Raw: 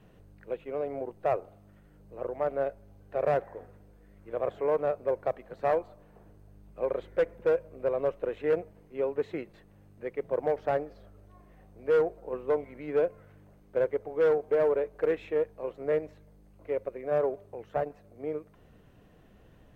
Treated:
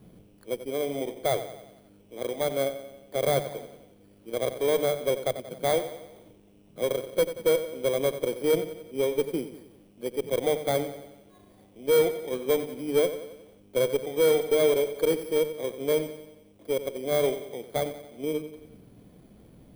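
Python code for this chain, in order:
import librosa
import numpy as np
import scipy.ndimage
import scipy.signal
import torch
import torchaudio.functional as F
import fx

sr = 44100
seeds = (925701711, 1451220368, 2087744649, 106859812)

y = fx.bit_reversed(x, sr, seeds[0], block=16)
y = fx.peak_eq(y, sr, hz=210.0, db=9.0, octaves=2.0)
y = fx.cheby_harmonics(y, sr, harmonics=(3, 4, 5), levels_db=(-24, -28, -28), full_scale_db=-12.5)
y = fx.hum_notches(y, sr, base_hz=50, count=4)
y = fx.echo_feedback(y, sr, ms=91, feedback_pct=54, wet_db=-12.0)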